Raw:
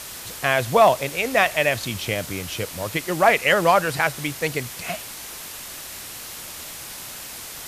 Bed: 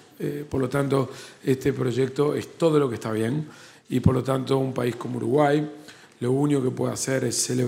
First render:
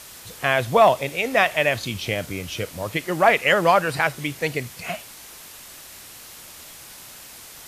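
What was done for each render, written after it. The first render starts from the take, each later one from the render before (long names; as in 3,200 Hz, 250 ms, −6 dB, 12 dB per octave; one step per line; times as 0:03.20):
noise reduction from a noise print 6 dB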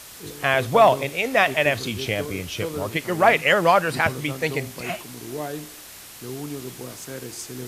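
mix in bed −11.5 dB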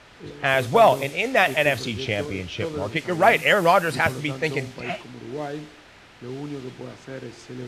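notch filter 1,100 Hz, Q 15
low-pass that shuts in the quiet parts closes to 2,200 Hz, open at −16 dBFS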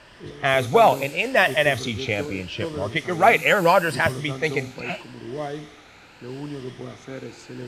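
rippled gain that drifts along the octave scale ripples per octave 1.3, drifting +0.78 Hz, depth 7 dB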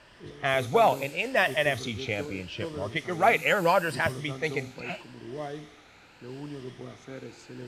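level −6 dB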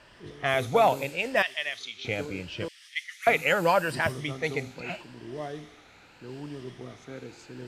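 0:01.42–0:02.05: resonant band-pass 3,600 Hz, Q 1
0:02.68–0:03.27: Butterworth high-pass 1,800 Hz 48 dB per octave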